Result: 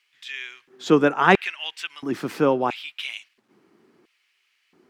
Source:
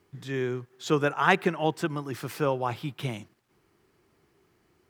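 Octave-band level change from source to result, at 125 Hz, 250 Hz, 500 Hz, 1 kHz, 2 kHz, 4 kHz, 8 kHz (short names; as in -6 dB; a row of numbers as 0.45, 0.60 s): -1.5, +6.5, +5.5, +4.5, +5.0, +7.0, +0.5 dB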